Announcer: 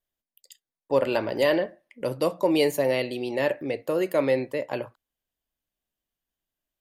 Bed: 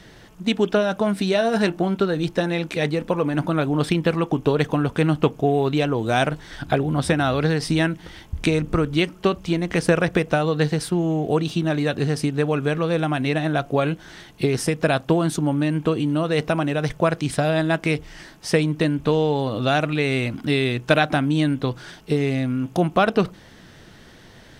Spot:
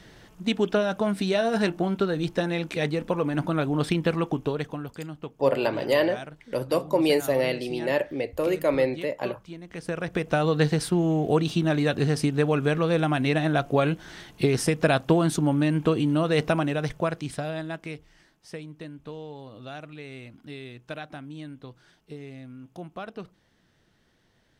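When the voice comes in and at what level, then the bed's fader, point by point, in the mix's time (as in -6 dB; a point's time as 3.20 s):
4.50 s, 0.0 dB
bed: 4.26 s -4 dB
5.09 s -18.5 dB
9.66 s -18.5 dB
10.45 s -1.5 dB
16.49 s -1.5 dB
18.38 s -19.5 dB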